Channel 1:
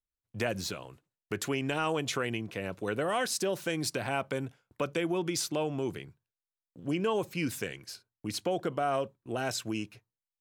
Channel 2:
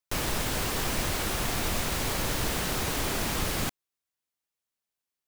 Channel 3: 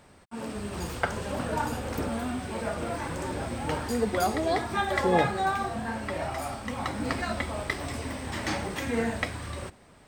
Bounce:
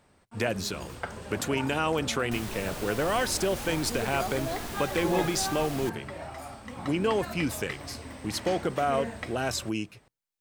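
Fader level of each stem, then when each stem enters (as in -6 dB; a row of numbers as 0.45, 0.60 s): +3.0, -9.5, -7.5 dB; 0.00, 2.20, 0.00 s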